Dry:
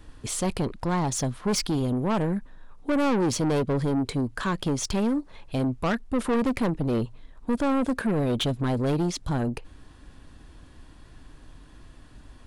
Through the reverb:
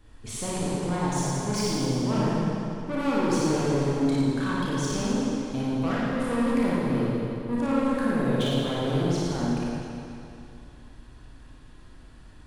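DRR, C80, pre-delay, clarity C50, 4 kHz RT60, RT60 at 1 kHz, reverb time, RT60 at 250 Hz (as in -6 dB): -8.0 dB, -2.5 dB, 29 ms, -6.0 dB, 2.5 s, 2.7 s, 2.7 s, 2.8 s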